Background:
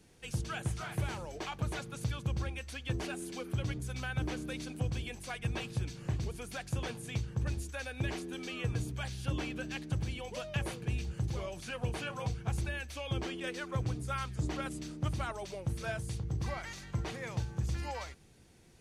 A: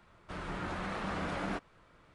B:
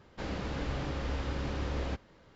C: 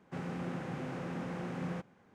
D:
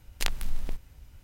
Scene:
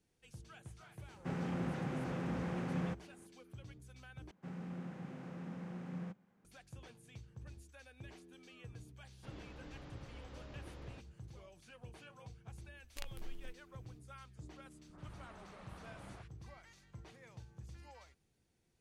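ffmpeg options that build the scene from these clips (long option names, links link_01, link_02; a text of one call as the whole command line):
ffmpeg -i bed.wav -i cue0.wav -i cue1.wav -i cue2.wav -i cue3.wav -filter_complex "[3:a]asplit=2[link_01][link_02];[0:a]volume=-17.5dB[link_03];[link_01]lowshelf=frequency=140:gain=6[link_04];[link_02]equalizer=frequency=190:width_type=o:width=0.4:gain=10[link_05];[1:a]acrossover=split=370|1600[link_06][link_07][link_08];[link_07]adelay=50[link_09];[link_08]adelay=100[link_10];[link_06][link_09][link_10]amix=inputs=3:normalize=0[link_11];[link_03]asplit=2[link_12][link_13];[link_12]atrim=end=4.314[link_14];[link_05]atrim=end=2.14,asetpts=PTS-STARTPTS,volume=-11.5dB[link_15];[link_13]atrim=start=6.446[link_16];[link_04]atrim=end=2.14,asetpts=PTS-STARTPTS,volume=-1.5dB,afade=type=in:duration=0.004:curve=hsin,afade=type=out:start_time=2.136:duration=0.004:curve=hsin,adelay=1130[link_17];[2:a]atrim=end=2.35,asetpts=PTS-STARTPTS,volume=-17.5dB,afade=type=in:duration=0.004:curve=hsin,afade=type=out:start_time=2.346:duration=0.004:curve=hsin,adelay=9050[link_18];[4:a]atrim=end=1.23,asetpts=PTS-STARTPTS,volume=-18dB,afade=type=in:duration=0.004:curve=hsin,afade=type=out:start_time=1.226:duration=0.004:curve=hsin,adelay=12760[link_19];[link_11]atrim=end=2.14,asetpts=PTS-STARTPTS,volume=-16.5dB,afade=type=in:duration=0.004:curve=hsin,afade=type=out:start_time=2.136:duration=0.004:curve=hsin,adelay=14590[link_20];[link_14][link_15]acrossfade=duration=0.004:curve1=hsin:curve2=hsin[link_21];[link_21][link_16]acrossfade=duration=0.004:curve1=hsin:curve2=hsin[link_22];[link_22][link_17][link_18][link_19][link_20]amix=inputs=5:normalize=0" out.wav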